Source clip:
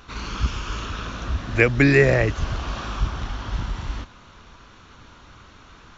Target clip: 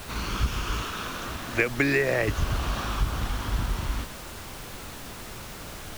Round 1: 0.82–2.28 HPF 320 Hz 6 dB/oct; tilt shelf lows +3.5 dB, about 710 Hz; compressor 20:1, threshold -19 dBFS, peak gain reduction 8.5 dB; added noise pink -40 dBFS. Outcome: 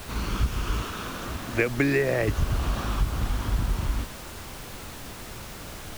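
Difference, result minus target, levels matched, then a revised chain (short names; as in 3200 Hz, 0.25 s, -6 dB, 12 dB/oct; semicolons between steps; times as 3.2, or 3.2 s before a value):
1000 Hz band -2.5 dB
0.82–2.28 HPF 320 Hz 6 dB/oct; compressor 20:1, threshold -19 dBFS, peak gain reduction 8.5 dB; added noise pink -40 dBFS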